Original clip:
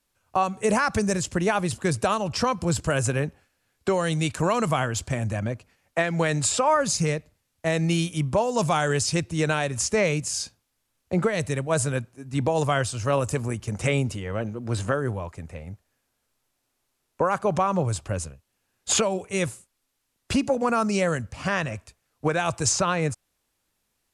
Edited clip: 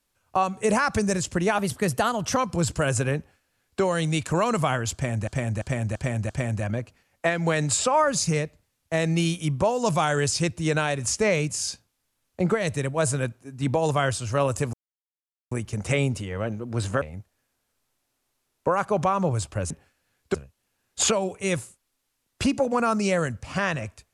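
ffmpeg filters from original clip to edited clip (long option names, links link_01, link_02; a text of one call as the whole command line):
ffmpeg -i in.wav -filter_complex "[0:a]asplit=11[link_01][link_02][link_03][link_04][link_05][link_06][link_07][link_08][link_09][link_10][link_11];[link_01]atrim=end=1.584[link_12];[link_02]atrim=start=1.58:end=2.45,asetpts=PTS-STARTPTS,asetrate=48951,aresample=44100[link_13];[link_03]atrim=start=2.446:end=5.362[link_14];[link_04]atrim=start=5.018:end=5.362[link_15];[link_05]atrim=start=5.018:end=5.362[link_16];[link_06]atrim=start=5.018:end=5.362[link_17];[link_07]atrim=start=5.018:end=13.46,asetpts=PTS-STARTPTS,afade=type=out:start_time=8.438:duration=0.004:curve=hsin,apad=pad_dur=0.78[link_18];[link_08]atrim=start=13.46:end=14.962,asetpts=PTS-STARTPTS,afade=type=in:duration=0.004:curve=hsin[link_19];[link_09]atrim=start=15.548:end=18.242[link_20];[link_10]atrim=start=3.258:end=3.902[link_21];[link_11]atrim=start=18.238[link_22];[link_12][link_13]acrossfade=duration=0.004:curve1=hsin:curve2=hsin[link_23];[link_23][link_14]acrossfade=duration=0.004:curve1=hsin:curve2=hsin[link_24];[link_24][link_15]acrossfade=duration=0.004:curve1=hsin:curve2=hsin[link_25];[link_25][link_16]acrossfade=duration=0.004:curve1=hsin:curve2=hsin[link_26];[link_26][link_17]acrossfade=duration=0.004:curve1=hsin:curve2=hsin[link_27];[link_18][link_19]concat=n=2:v=0:a=1[link_28];[link_27][link_28]acrossfade=duration=0.004:curve1=hsin:curve2=hsin[link_29];[link_29][link_20]acrossfade=duration=0.004:curve1=hsin:curve2=hsin[link_30];[link_30][link_21]acrossfade=duration=0.004:curve1=hsin:curve2=hsin[link_31];[link_31][link_22]acrossfade=duration=0.004:curve1=hsin:curve2=hsin" out.wav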